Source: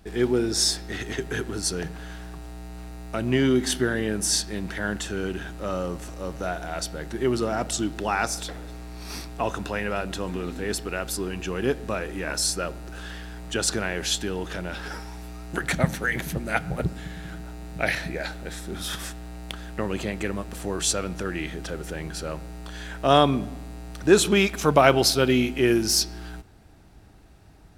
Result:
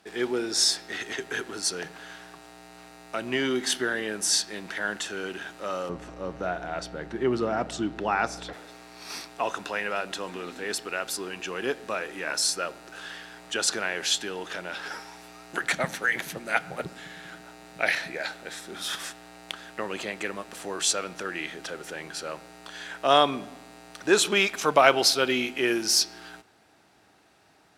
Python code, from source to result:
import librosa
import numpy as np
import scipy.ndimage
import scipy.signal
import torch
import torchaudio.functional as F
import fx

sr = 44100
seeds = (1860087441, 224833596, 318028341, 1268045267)

y = fx.riaa(x, sr, side='playback', at=(5.89, 8.53))
y = fx.cheby_harmonics(y, sr, harmonics=(4,), levels_db=(-35,), full_scale_db=-1.0)
y = fx.weighting(y, sr, curve='A')